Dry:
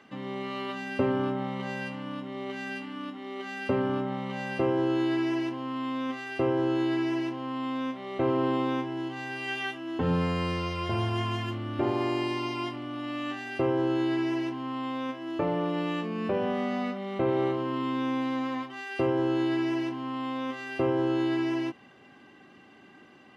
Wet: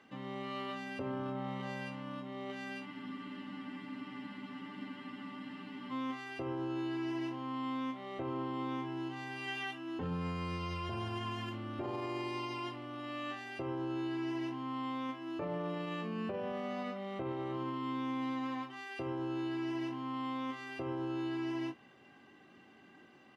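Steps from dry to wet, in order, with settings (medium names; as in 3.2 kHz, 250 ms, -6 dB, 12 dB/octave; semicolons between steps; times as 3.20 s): doubling 22 ms -8.5 dB; peak limiter -24 dBFS, peak gain reduction 10 dB; spectral freeze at 2.87 s, 3.03 s; trim -6.5 dB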